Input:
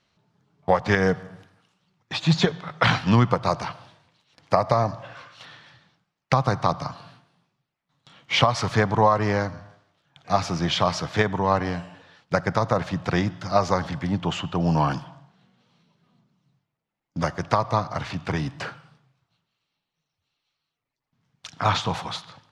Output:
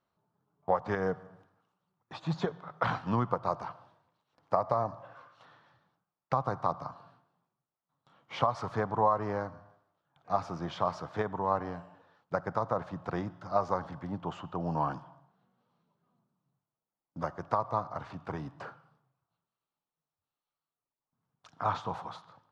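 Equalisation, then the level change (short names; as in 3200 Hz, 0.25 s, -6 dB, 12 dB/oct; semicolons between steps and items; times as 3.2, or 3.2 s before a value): tone controls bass -5 dB, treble -4 dB; resonant high shelf 1600 Hz -8.5 dB, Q 1.5; -9.0 dB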